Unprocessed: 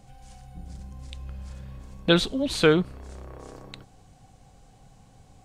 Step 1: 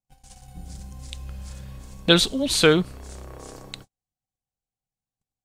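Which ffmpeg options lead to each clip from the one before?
-af "agate=range=-43dB:threshold=-45dB:ratio=16:detection=peak,highshelf=f=4k:g=11.5,volume=1.5dB"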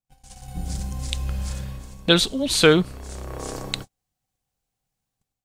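-af "dynaudnorm=f=180:g=5:m=11.5dB,volume=-1dB"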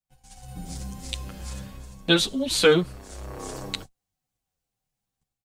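-filter_complex "[0:a]acrossover=split=150|2500[a][b][c];[a]asoftclip=type=tanh:threshold=-33dB[d];[d][b][c]amix=inputs=3:normalize=0,asplit=2[e][f];[f]adelay=8.6,afreqshift=-2.9[g];[e][g]amix=inputs=2:normalize=1"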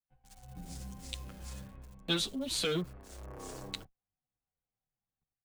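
-filter_complex "[0:a]acrossover=split=230|2500[a][b][c];[b]asoftclip=type=tanh:threshold=-23.5dB[d];[c]acrusher=bits=7:mix=0:aa=0.000001[e];[a][d][e]amix=inputs=3:normalize=0,volume=-9dB"

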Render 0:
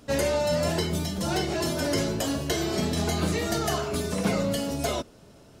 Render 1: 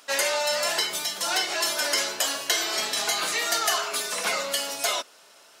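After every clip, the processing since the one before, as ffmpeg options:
-af "highpass=1.1k,volume=8dB"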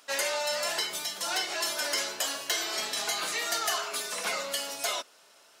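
-af "asoftclip=type=hard:threshold=-15dB,volume=-5dB"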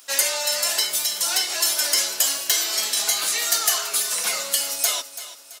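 -af "crystalizer=i=3.5:c=0,aecho=1:1:334|668|1002|1336:0.2|0.0778|0.0303|0.0118"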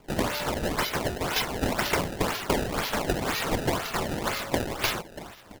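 -af "acrusher=samples=23:mix=1:aa=0.000001:lfo=1:lforange=36.8:lforate=2,volume=-5dB"

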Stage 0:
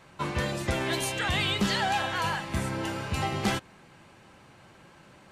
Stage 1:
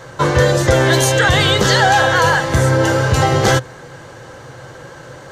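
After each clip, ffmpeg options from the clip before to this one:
-filter_complex "[0:a]equalizer=f=125:t=o:w=0.33:g=9,equalizer=f=200:t=o:w=0.33:g=-11,equalizer=f=500:t=o:w=0.33:g=11,equalizer=f=1.6k:t=o:w=0.33:g=5,equalizer=f=2.5k:t=o:w=0.33:g=-10,equalizer=f=6.3k:t=o:w=0.33:g=6,equalizer=f=10k:t=o:w=0.33:g=-4,asplit=2[a][b];[b]alimiter=limit=-22dB:level=0:latency=1,volume=0dB[c];[a][c]amix=inputs=2:normalize=0,acontrast=50,volume=4dB"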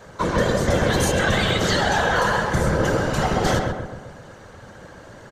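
-filter_complex "[0:a]afftfilt=real='hypot(re,im)*cos(2*PI*random(0))':imag='hypot(re,im)*sin(2*PI*random(1))':win_size=512:overlap=0.75,asplit=2[a][b];[b]adelay=131,lowpass=f=1.7k:p=1,volume=-3dB,asplit=2[c][d];[d]adelay=131,lowpass=f=1.7k:p=1,volume=0.53,asplit=2[e][f];[f]adelay=131,lowpass=f=1.7k:p=1,volume=0.53,asplit=2[g][h];[h]adelay=131,lowpass=f=1.7k:p=1,volume=0.53,asplit=2[i][j];[j]adelay=131,lowpass=f=1.7k:p=1,volume=0.53,asplit=2[k][l];[l]adelay=131,lowpass=f=1.7k:p=1,volume=0.53,asplit=2[m][n];[n]adelay=131,lowpass=f=1.7k:p=1,volume=0.53[o];[a][c][e][g][i][k][m][o]amix=inputs=8:normalize=0,volume=-2.5dB"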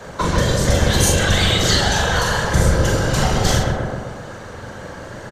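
-filter_complex "[0:a]acrossover=split=120|3000[a][b][c];[b]acompressor=threshold=-28dB:ratio=6[d];[a][d][c]amix=inputs=3:normalize=0,asplit=2[e][f];[f]adelay=42,volume=-4.5dB[g];[e][g]amix=inputs=2:normalize=0,volume=8dB" -ar 44100 -c:a libmp3lame -b:a 224k

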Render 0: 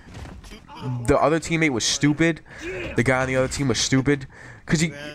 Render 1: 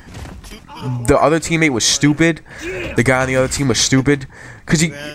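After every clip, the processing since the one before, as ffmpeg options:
-af "highshelf=f=9.7k:g=9.5,volume=6dB"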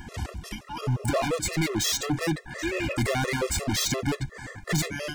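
-af "volume=21dB,asoftclip=hard,volume=-21dB,afftfilt=real='re*gt(sin(2*PI*5.7*pts/sr)*(1-2*mod(floor(b*sr/1024/350),2)),0)':imag='im*gt(sin(2*PI*5.7*pts/sr)*(1-2*mod(floor(b*sr/1024/350),2)),0)':win_size=1024:overlap=0.75"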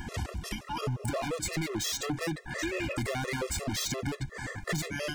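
-af "acompressor=threshold=-32dB:ratio=6,volume=2dB"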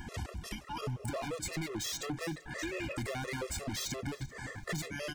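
-af "aecho=1:1:386|772:0.0944|0.0283,volume=-5dB"

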